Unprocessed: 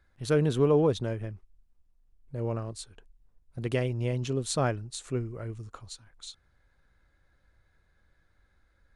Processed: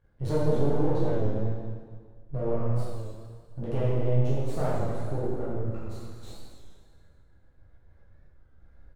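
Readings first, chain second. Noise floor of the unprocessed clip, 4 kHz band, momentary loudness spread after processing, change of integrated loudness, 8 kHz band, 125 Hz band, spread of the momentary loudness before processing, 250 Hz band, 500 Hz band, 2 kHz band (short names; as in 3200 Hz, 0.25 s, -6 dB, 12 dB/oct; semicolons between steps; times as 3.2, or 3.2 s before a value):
-68 dBFS, -10.5 dB, 18 LU, -0.5 dB, under -10 dB, +3.0 dB, 21 LU, +0.5 dB, 0.0 dB, -6.5 dB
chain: on a send: echo 0.246 s -15.5 dB; on the sum: spectral gain 4.91–5.72, 1700–10000 Hz -12 dB; compressor, threshold -30 dBFS, peak gain reduction 11.5 dB; flange 0.4 Hz, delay 9 ms, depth 9.2 ms, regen +62%; half-wave rectifier; tilt shelf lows +9.5 dB, about 1200 Hz; random-step tremolo; plate-style reverb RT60 1.8 s, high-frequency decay 0.9×, DRR -8.5 dB; record warp 33 1/3 rpm, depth 100 cents; gain +2.5 dB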